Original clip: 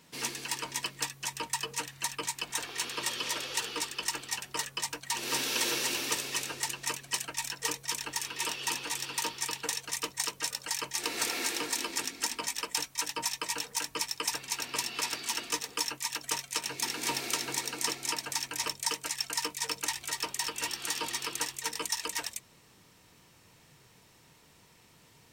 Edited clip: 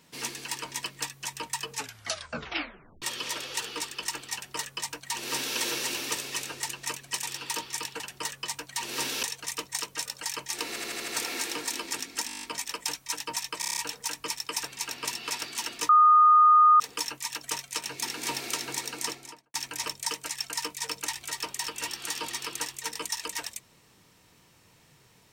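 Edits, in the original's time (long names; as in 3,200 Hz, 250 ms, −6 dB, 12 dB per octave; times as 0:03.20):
0:01.72: tape stop 1.30 s
0:04.34–0:05.57: duplicate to 0:09.68
0:07.23–0:08.91: remove
0:11.13: stutter 0.08 s, 6 plays
0:12.32: stutter 0.02 s, 9 plays
0:13.48: stutter 0.03 s, 7 plays
0:15.60: insert tone 1,230 Hz −14 dBFS 0.91 s
0:17.80–0:18.34: fade out and dull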